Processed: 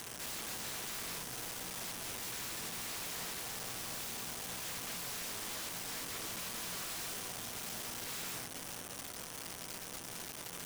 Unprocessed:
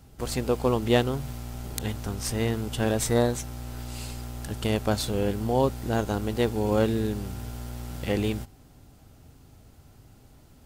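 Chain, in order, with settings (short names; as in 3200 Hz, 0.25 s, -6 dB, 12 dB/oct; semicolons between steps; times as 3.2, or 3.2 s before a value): delta modulation 16 kbps, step -31.5 dBFS; inverse Chebyshev high-pass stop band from 500 Hz, stop band 50 dB; in parallel at -2.5 dB: negative-ratio compressor -44 dBFS, ratio -0.5; on the sum: wrapped overs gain 40 dB; requantised 8-bit, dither none; on a send at -8.5 dB: reverb RT60 0.45 s, pre-delay 3 ms; on the sum: gain +2.5 dB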